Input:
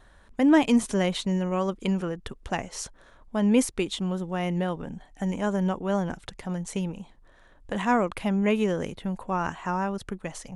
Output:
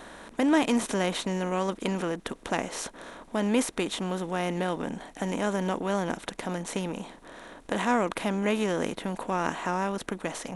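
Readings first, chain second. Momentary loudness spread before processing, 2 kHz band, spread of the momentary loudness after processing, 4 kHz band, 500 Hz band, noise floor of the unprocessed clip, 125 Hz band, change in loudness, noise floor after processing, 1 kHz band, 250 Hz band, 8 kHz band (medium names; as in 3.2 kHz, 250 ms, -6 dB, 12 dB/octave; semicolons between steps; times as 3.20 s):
14 LU, +1.0 dB, 10 LU, +0.5 dB, -0.5 dB, -55 dBFS, -4.5 dB, -2.5 dB, -52 dBFS, 0.0 dB, -3.5 dB, +0.5 dB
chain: spectral levelling over time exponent 0.6; bass shelf 170 Hz -8.5 dB; trim -3.5 dB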